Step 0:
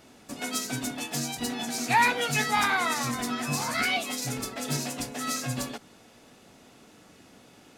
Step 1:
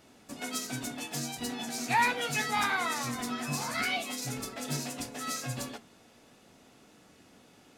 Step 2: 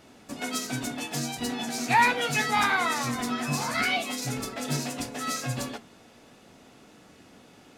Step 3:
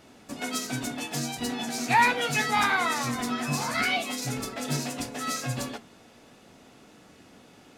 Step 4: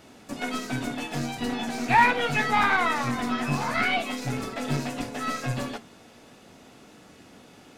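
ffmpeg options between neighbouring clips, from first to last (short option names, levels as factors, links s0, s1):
-af "flanger=delay=9.8:depth=5.4:regen=-74:speed=0.37:shape=sinusoidal"
-af "highshelf=f=5700:g=-4.5,volume=1.88"
-af anull
-filter_complex "[0:a]aeval=exprs='0.316*(cos(1*acos(clip(val(0)/0.316,-1,1)))-cos(1*PI/2))+0.0355*(cos(6*acos(clip(val(0)/0.316,-1,1)))-cos(6*PI/2))+0.0398*(cos(8*acos(clip(val(0)/0.316,-1,1)))-cos(8*PI/2))':c=same,acrossover=split=3200[s0][s1];[s1]acompressor=threshold=0.00562:ratio=4:attack=1:release=60[s2];[s0][s2]amix=inputs=2:normalize=0,volume=1.33"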